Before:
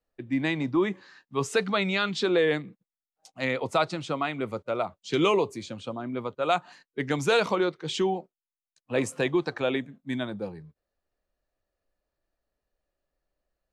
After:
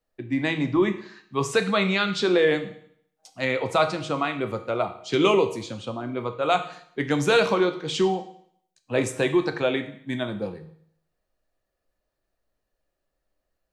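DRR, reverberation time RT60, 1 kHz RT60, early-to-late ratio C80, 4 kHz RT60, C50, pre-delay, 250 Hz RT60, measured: 7.5 dB, 0.65 s, 0.65 s, 15.0 dB, 0.65 s, 12.0 dB, 6 ms, 0.65 s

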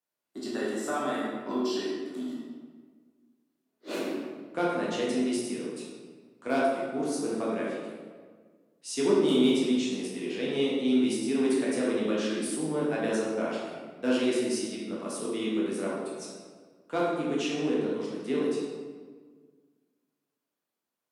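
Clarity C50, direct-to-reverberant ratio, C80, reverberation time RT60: −0.5 dB, −6.0 dB, 2.0 dB, 1.6 s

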